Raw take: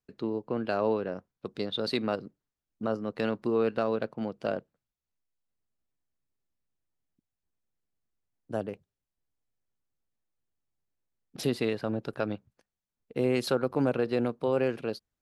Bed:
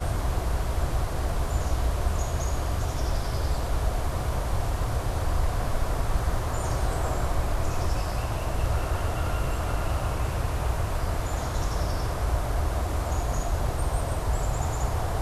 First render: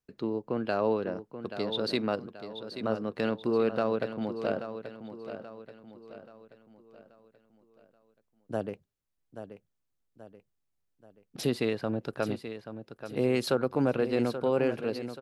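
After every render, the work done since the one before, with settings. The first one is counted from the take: feedback echo 0.831 s, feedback 44%, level -10.5 dB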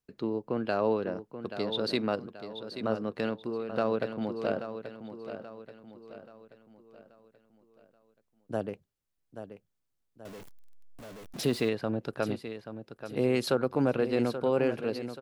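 3.1–3.69 fade out, to -12.5 dB; 10.25–11.69 zero-crossing step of -41 dBFS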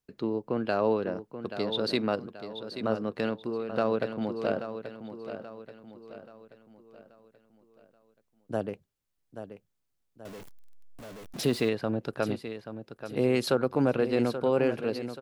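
gain +1.5 dB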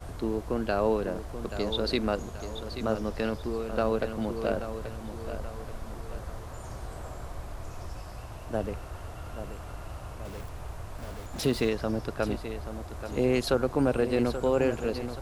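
add bed -13 dB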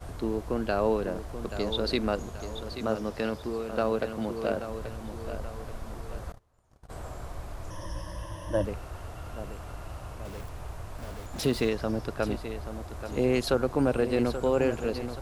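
2.73–4.7 HPF 100 Hz 6 dB/oct; 6.32–6.9 gate -35 dBFS, range -29 dB; 7.7–8.65 ripple EQ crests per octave 1.2, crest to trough 16 dB

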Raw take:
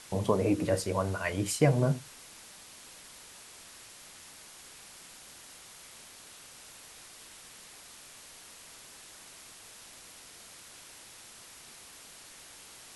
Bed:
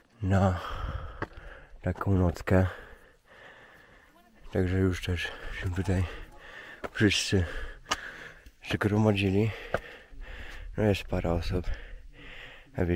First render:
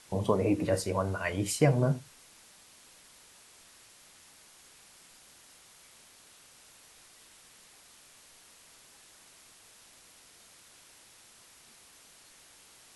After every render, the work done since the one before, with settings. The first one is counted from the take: noise print and reduce 6 dB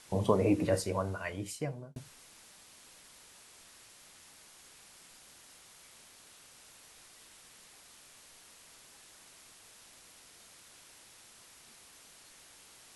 0.58–1.96 fade out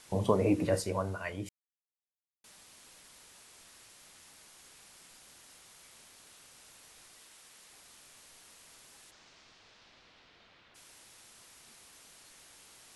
1.49–2.44 mute; 7.2–7.7 low shelf 210 Hz -8 dB; 9.1–10.74 LPF 6200 Hz -> 3500 Hz 24 dB/oct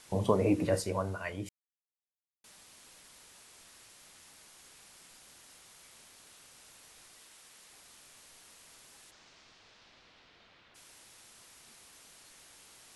nothing audible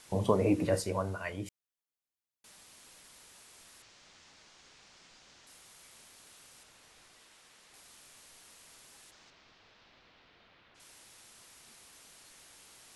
3.82–5.47 LPF 6400 Hz 24 dB/oct; 6.63–7.74 high shelf 7800 Hz -11.5 dB; 9.3–10.8 air absorption 110 m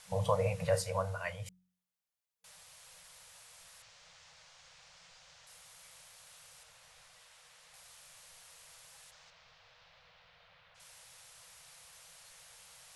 de-hum 45.62 Hz, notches 7; FFT band-reject 190–460 Hz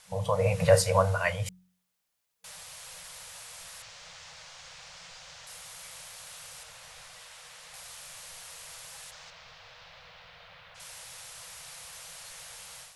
AGC gain up to 11 dB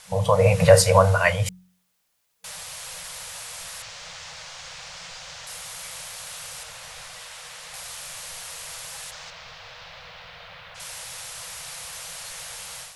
gain +8.5 dB; limiter -2 dBFS, peak gain reduction 2.5 dB

